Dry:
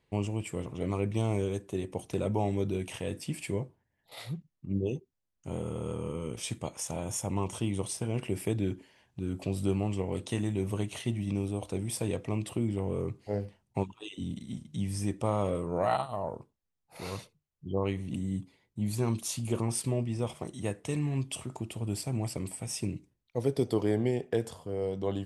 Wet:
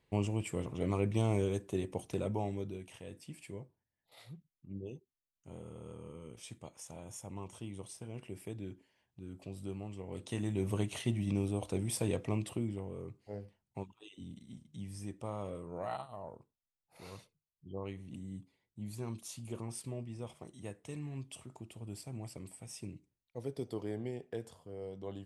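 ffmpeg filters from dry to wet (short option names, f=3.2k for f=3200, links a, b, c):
-af "volume=10dB,afade=t=out:st=1.76:d=1.07:silence=0.266073,afade=t=in:st=10.01:d=0.74:silence=0.266073,afade=t=out:st=12.27:d=0.63:silence=0.316228"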